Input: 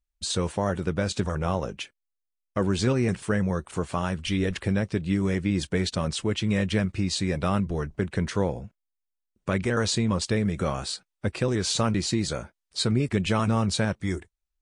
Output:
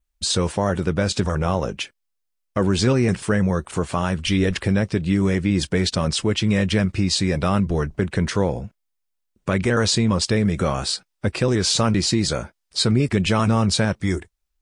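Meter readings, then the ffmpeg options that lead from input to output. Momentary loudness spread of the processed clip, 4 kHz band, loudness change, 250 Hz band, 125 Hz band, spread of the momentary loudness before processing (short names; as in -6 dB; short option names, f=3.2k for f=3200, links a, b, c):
7 LU, +7.5 dB, +5.5 dB, +5.5 dB, +5.5 dB, 7 LU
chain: -filter_complex "[0:a]adynamicequalizer=threshold=0.00282:dfrequency=5100:dqfactor=6.9:tfrequency=5100:tqfactor=6.9:attack=5:release=100:ratio=0.375:range=2.5:mode=boostabove:tftype=bell,asplit=2[a][b];[b]alimiter=limit=-19.5dB:level=0:latency=1,volume=-2dB[c];[a][c]amix=inputs=2:normalize=0,volume=2dB"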